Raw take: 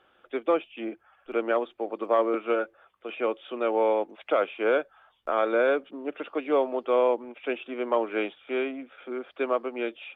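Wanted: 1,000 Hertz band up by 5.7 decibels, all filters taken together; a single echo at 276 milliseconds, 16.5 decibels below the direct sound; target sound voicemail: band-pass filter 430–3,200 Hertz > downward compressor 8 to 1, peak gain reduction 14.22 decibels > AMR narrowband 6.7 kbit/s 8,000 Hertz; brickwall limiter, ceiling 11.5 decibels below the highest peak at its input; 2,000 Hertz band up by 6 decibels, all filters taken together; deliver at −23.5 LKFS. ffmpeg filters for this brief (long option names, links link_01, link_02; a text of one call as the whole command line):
ffmpeg -i in.wav -af "equalizer=frequency=1000:width_type=o:gain=5.5,equalizer=frequency=2000:width_type=o:gain=7,alimiter=limit=-18.5dB:level=0:latency=1,highpass=430,lowpass=3200,aecho=1:1:276:0.15,acompressor=threshold=-38dB:ratio=8,volume=20dB" -ar 8000 -c:a libopencore_amrnb -b:a 6700 out.amr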